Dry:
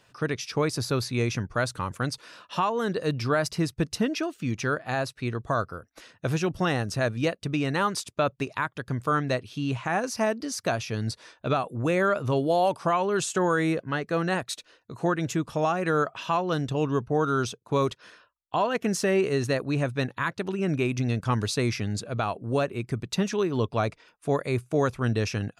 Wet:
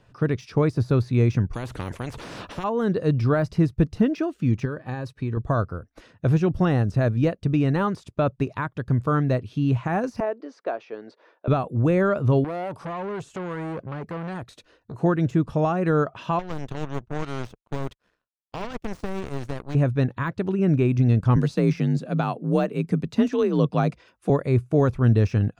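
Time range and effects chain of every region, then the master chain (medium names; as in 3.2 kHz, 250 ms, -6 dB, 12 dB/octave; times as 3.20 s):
1.53–2.64 s: de-esser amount 60% + spectrum-flattening compressor 4:1
4.65–5.37 s: compression, threshold -28 dBFS + comb of notches 690 Hz
10.20–11.48 s: high-pass 380 Hz 24 dB/octave + tape spacing loss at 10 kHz 31 dB
12.44–15.01 s: treble shelf 10 kHz +7.5 dB + compression 5:1, threshold -26 dBFS + transformer saturation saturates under 1.7 kHz
16.39–19.75 s: power-law waveshaper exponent 2 + spectrum-flattening compressor 2:1
21.36–24.30 s: treble shelf 2.3 kHz +7.5 dB + frequency shift +43 Hz
whole clip: de-esser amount 90%; tilt EQ -3 dB/octave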